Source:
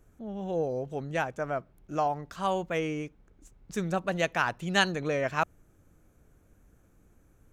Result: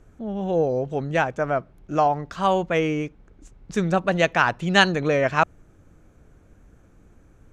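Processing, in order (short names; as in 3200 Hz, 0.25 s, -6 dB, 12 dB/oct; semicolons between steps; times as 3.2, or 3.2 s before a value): air absorption 61 m; gain +8.5 dB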